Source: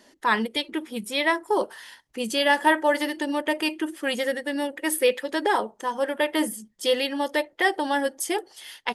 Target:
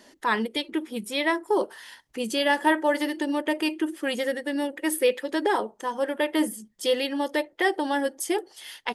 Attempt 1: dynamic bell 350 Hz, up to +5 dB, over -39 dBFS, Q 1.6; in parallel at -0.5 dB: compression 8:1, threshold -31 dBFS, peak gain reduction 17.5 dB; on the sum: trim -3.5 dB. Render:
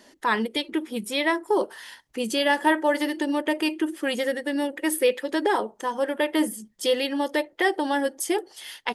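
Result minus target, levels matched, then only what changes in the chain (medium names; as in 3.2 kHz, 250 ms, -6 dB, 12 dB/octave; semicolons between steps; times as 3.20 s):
compression: peak gain reduction -8.5 dB
change: compression 8:1, threshold -41 dBFS, peak gain reduction 26.5 dB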